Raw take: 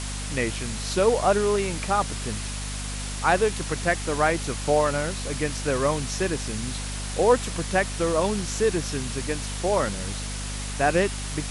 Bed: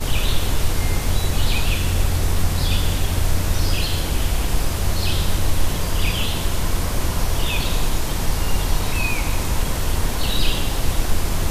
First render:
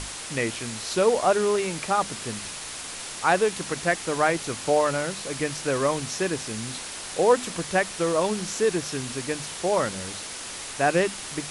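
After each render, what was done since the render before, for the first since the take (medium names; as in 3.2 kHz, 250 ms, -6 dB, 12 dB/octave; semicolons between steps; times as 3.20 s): hum notches 50/100/150/200/250 Hz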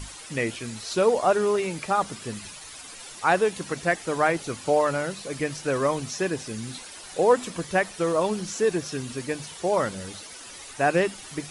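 noise reduction 11 dB, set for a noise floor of -37 dBFS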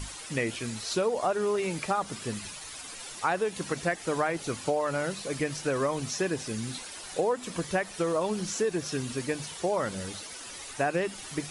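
compression 6:1, threshold -24 dBFS, peak gain reduction 10.5 dB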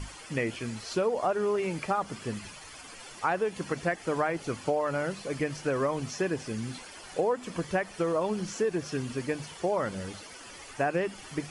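treble shelf 5.3 kHz -10.5 dB; band-stop 3.8 kHz, Q 9.2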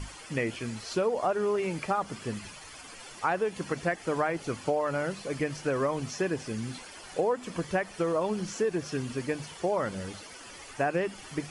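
no audible change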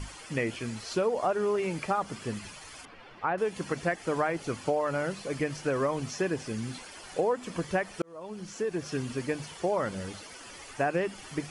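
2.85–3.38 s: distance through air 350 m; 8.02–8.94 s: fade in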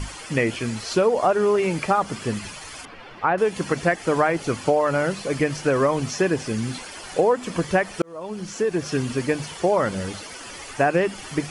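trim +8.5 dB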